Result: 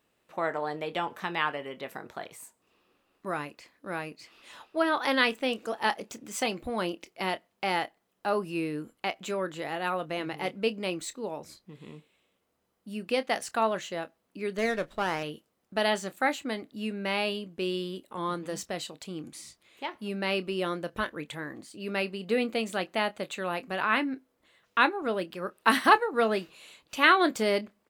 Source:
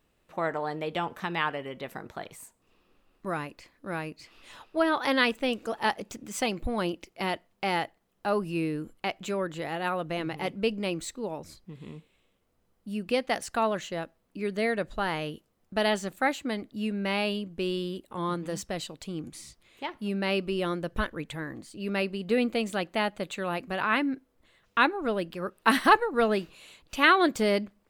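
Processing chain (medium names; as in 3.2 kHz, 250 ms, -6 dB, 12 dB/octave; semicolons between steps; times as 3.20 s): high-pass 240 Hz 6 dB/octave; doubling 27 ms -14 dB; 14.58–15.23 s: sliding maximum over 5 samples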